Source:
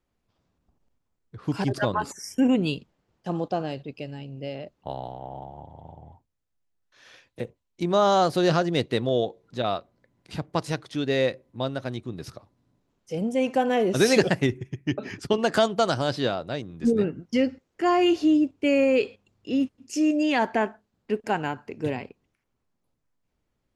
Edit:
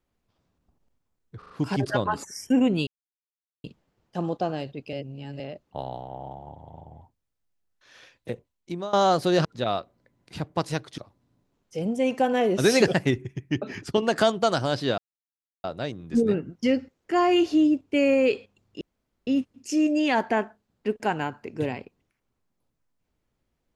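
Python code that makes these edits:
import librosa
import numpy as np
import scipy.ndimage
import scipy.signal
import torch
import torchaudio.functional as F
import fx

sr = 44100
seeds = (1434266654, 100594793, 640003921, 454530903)

y = fx.edit(x, sr, fx.stutter(start_s=1.38, slice_s=0.04, count=4),
    fx.insert_silence(at_s=2.75, length_s=0.77),
    fx.reverse_span(start_s=4.04, length_s=0.47),
    fx.fade_out_to(start_s=7.41, length_s=0.63, curve='qsin', floor_db=-21.0),
    fx.cut(start_s=8.56, length_s=0.87),
    fx.cut(start_s=10.96, length_s=1.38),
    fx.insert_silence(at_s=16.34, length_s=0.66),
    fx.insert_room_tone(at_s=19.51, length_s=0.46), tone=tone)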